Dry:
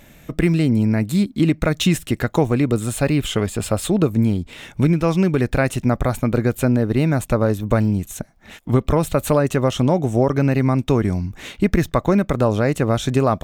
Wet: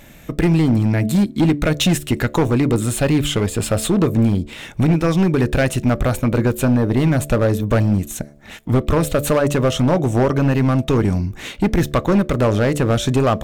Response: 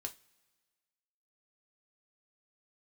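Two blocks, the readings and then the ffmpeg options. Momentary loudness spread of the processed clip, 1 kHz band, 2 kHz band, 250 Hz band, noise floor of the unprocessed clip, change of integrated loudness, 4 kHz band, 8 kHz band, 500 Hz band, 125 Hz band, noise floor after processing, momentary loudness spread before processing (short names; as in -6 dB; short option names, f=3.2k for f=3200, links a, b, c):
4 LU, +1.0 dB, +2.0 dB, +1.5 dB, -49 dBFS, +1.5 dB, +3.5 dB, +3.5 dB, +1.0 dB, +2.0 dB, -40 dBFS, 5 LU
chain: -filter_complex "[0:a]bandreject=f=72.8:t=h:w=4,bandreject=f=145.6:t=h:w=4,bandreject=f=218.4:t=h:w=4,bandreject=f=291.2:t=h:w=4,bandreject=f=364:t=h:w=4,bandreject=f=436.8:t=h:w=4,bandreject=f=509.6:t=h:w=4,bandreject=f=582.4:t=h:w=4,bandreject=f=655.2:t=h:w=4,asoftclip=type=hard:threshold=-14dB,asplit=2[a][b];[1:a]atrim=start_sample=2205,asetrate=48510,aresample=44100[c];[b][c]afir=irnorm=-1:irlink=0,volume=-12.5dB[d];[a][d]amix=inputs=2:normalize=0,volume=2.5dB"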